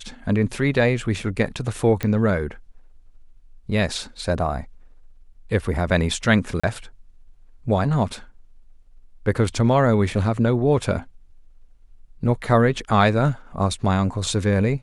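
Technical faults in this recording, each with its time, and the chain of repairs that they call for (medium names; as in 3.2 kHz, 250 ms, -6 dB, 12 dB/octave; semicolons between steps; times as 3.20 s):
2.03 s: pop -12 dBFS
6.60–6.63 s: dropout 35 ms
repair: de-click; interpolate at 6.60 s, 35 ms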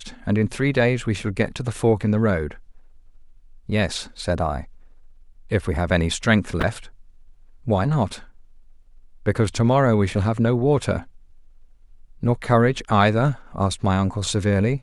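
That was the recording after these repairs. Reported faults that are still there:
nothing left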